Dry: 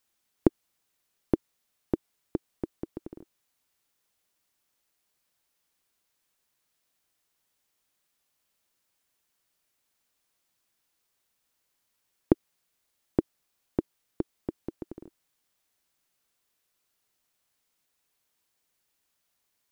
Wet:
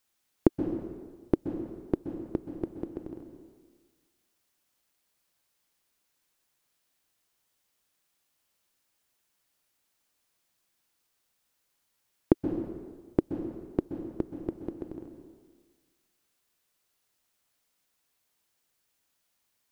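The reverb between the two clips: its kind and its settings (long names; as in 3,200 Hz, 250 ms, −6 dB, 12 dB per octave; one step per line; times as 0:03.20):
dense smooth reverb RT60 1.5 s, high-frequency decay 0.85×, pre-delay 115 ms, DRR 6.5 dB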